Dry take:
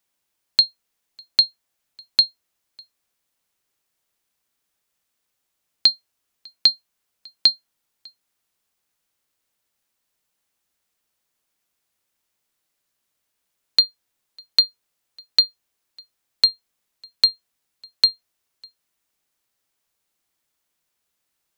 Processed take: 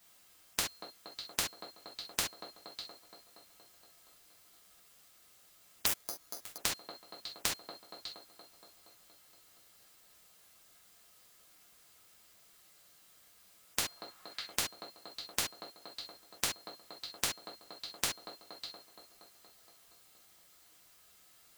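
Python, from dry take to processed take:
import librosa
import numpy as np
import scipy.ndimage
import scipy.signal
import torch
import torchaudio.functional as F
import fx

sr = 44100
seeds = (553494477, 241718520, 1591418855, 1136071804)

y = fx.peak_eq(x, sr, hz=fx.line((13.85, 680.0), (14.53, 2300.0)), db=12.5, octaves=1.5, at=(13.85, 14.53), fade=0.02)
y = fx.echo_wet_bandpass(y, sr, ms=235, feedback_pct=69, hz=480.0, wet_db=-14.5)
y = fx.rev_gated(y, sr, seeds[0], gate_ms=90, shape='falling', drr_db=-4.5)
y = fx.resample_bad(y, sr, factor=8, down='filtered', up='zero_stuff', at=(5.86, 6.58))
y = fx.spectral_comp(y, sr, ratio=10.0)
y = F.gain(torch.from_numpy(y), -7.0).numpy()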